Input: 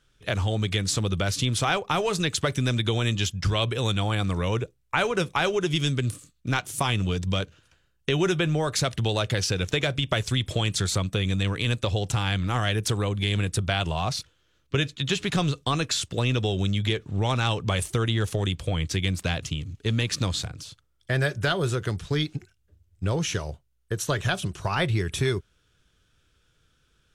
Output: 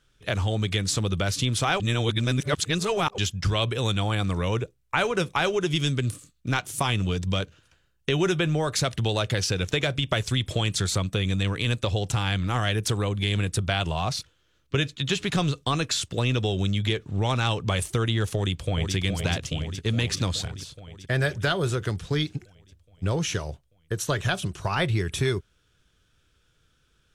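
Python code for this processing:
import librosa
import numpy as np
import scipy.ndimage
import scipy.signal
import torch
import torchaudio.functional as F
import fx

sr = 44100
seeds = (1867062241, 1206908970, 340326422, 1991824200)

y = fx.echo_throw(x, sr, start_s=18.35, length_s=0.6, ms=420, feedback_pct=70, wet_db=-5.5)
y = fx.edit(y, sr, fx.reverse_span(start_s=1.8, length_s=1.38), tone=tone)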